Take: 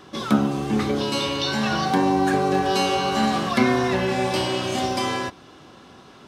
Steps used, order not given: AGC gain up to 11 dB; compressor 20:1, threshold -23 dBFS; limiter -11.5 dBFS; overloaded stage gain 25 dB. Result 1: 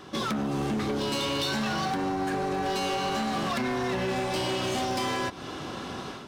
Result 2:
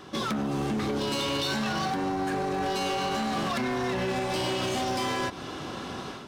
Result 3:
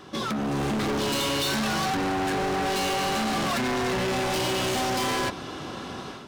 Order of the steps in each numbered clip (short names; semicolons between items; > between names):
limiter > AGC > compressor > overloaded stage; AGC > limiter > compressor > overloaded stage; limiter > compressor > AGC > overloaded stage